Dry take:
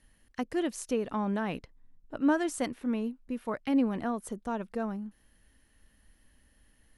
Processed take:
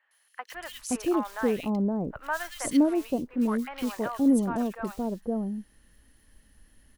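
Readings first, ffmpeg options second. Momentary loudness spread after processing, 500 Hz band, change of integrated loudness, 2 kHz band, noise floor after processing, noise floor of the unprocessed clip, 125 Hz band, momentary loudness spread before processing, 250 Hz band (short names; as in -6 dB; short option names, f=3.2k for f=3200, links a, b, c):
15 LU, +3.5 dB, +4.0 dB, +3.0 dB, -66 dBFS, -66 dBFS, +5.0 dB, 12 LU, +5.0 dB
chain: -filter_complex "[0:a]acrusher=bits=6:mode=log:mix=0:aa=0.000001,acrossover=split=750|2400[a][b][c];[c]adelay=110[d];[a]adelay=520[e];[e][b][d]amix=inputs=3:normalize=0,volume=5dB"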